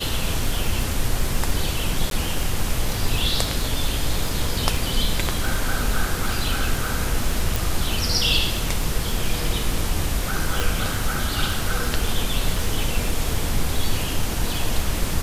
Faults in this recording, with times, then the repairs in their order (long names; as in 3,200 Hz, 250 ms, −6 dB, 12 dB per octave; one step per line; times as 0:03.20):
surface crackle 30 per second −24 dBFS
0:02.10–0:02.11: drop-out 12 ms
0:07.56: click
0:10.60: click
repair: click removal
repair the gap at 0:02.10, 12 ms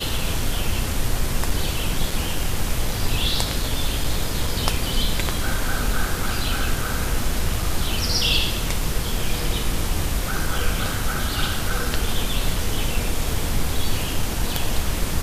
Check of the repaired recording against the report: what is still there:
0:10.60: click